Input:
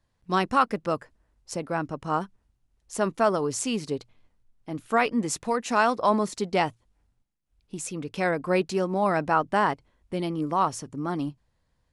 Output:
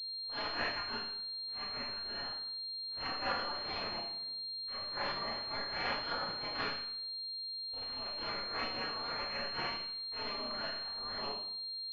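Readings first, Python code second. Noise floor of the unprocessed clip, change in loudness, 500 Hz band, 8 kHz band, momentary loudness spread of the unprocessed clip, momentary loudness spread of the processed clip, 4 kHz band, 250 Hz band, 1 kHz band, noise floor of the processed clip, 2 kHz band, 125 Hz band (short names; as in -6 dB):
-73 dBFS, -10.5 dB, -18.0 dB, under -30 dB, 12 LU, 4 LU, +6.5 dB, -21.0 dB, -15.0 dB, -42 dBFS, -8.0 dB, -19.5 dB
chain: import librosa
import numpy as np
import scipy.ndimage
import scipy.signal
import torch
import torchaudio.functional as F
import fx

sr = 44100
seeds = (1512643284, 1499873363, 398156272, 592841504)

y = fx.spec_gate(x, sr, threshold_db=-25, keep='weak')
y = fx.rev_schroeder(y, sr, rt60_s=0.63, comb_ms=27, drr_db=-10.0)
y = fx.pwm(y, sr, carrier_hz=4200.0)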